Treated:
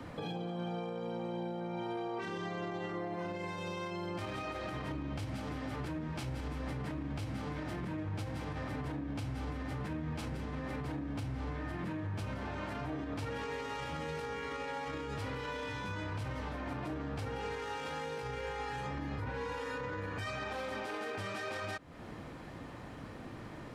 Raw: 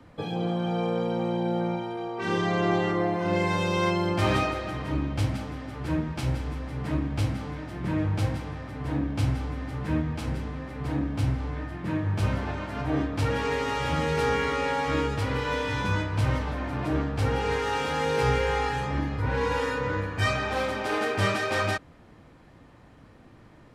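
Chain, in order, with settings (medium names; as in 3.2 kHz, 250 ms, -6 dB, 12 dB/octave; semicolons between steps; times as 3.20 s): bass shelf 90 Hz -6 dB; compression, threshold -40 dBFS, peak gain reduction 18 dB; peak limiter -38 dBFS, peak gain reduction 9 dB; trim +7 dB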